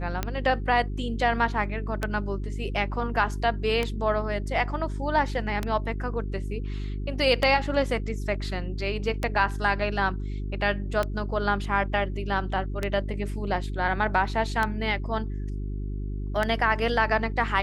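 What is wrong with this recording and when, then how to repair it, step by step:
hum 50 Hz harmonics 8 -31 dBFS
tick 33 1/3 rpm -12 dBFS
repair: de-click; de-hum 50 Hz, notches 8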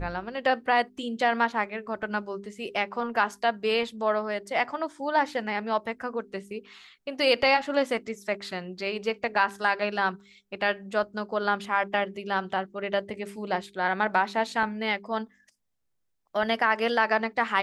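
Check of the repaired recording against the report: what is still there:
none

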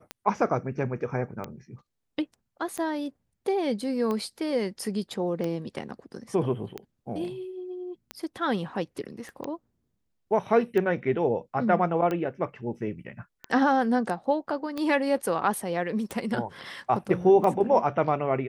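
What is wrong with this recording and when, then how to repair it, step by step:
tick 45 rpm -18 dBFS
9.29 pop -30 dBFS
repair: de-click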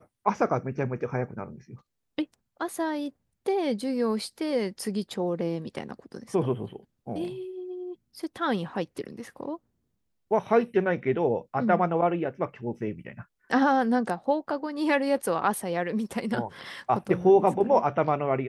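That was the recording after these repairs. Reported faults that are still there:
9.29 pop

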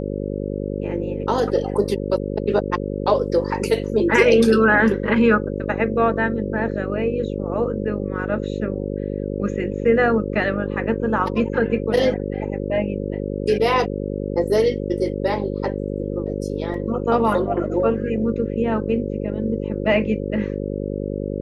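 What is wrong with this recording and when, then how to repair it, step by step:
buzz 50 Hz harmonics 11 -26 dBFS
16.74 gap 2.9 ms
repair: de-hum 50 Hz, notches 11; interpolate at 16.74, 2.9 ms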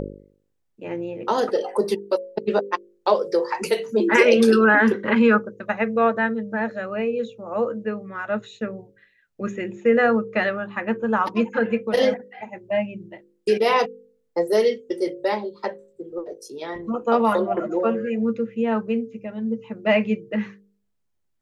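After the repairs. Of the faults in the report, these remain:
none

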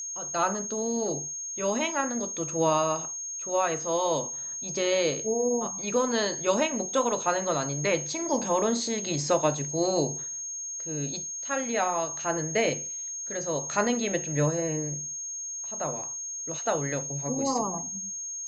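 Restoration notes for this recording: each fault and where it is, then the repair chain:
tone 6500 Hz -33 dBFS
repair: notch 6500 Hz, Q 30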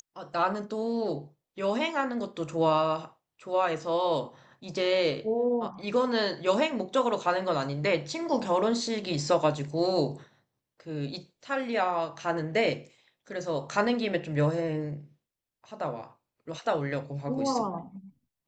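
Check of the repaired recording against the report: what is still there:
none

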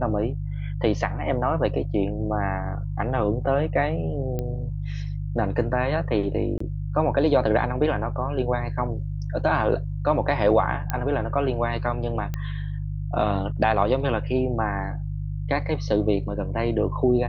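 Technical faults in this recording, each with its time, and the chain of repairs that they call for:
hum 50 Hz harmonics 3 -29 dBFS
4.39 pop -16 dBFS
6.58–6.6 gap 24 ms
10.9 pop -11 dBFS
12.34 pop -16 dBFS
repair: de-click; de-hum 50 Hz, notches 3; interpolate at 6.58, 24 ms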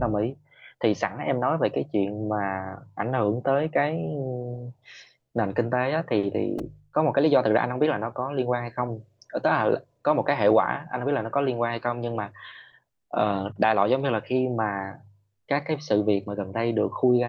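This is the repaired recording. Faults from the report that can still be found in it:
4.39 pop
12.34 pop

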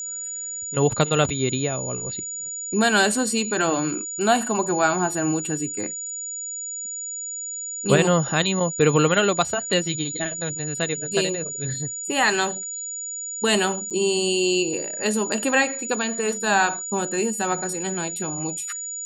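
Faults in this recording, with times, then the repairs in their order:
tone 6900 Hz -29 dBFS
13.9–13.91 gap 7 ms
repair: notch 6900 Hz, Q 30; interpolate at 13.9, 7 ms

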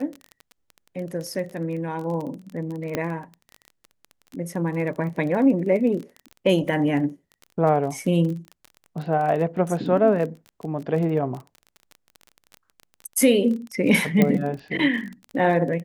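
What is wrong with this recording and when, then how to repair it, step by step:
crackle 21/s -30 dBFS
2.95 pop -11 dBFS
14.22 pop -7 dBFS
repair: de-click

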